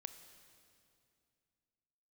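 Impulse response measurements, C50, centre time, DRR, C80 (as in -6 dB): 10.0 dB, 21 ms, 9.0 dB, 11.0 dB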